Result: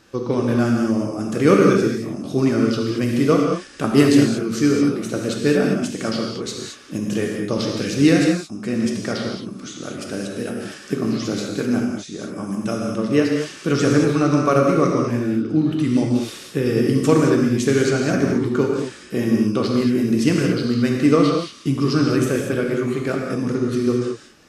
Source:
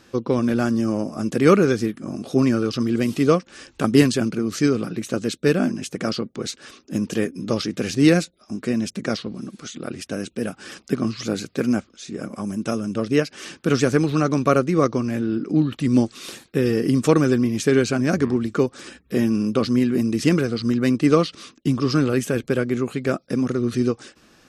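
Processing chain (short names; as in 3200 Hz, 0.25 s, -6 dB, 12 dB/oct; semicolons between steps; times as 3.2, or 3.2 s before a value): non-linear reverb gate 0.25 s flat, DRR -0.5 dB; gain -1.5 dB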